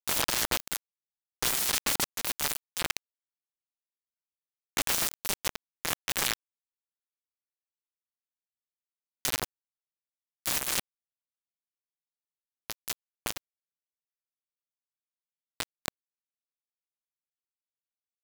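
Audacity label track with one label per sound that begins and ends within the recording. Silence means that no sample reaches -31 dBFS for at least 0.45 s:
1.430000	2.970000	sound
4.770000	6.340000	sound
9.250000	9.450000	sound
10.460000	10.800000	sound
12.700000	13.380000	sound
15.600000	15.880000	sound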